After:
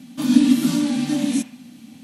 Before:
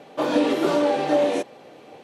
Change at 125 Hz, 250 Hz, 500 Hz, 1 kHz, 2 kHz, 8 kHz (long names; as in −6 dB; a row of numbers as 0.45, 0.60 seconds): +8.5, +8.0, −16.0, −12.0, −3.5, +10.5 decibels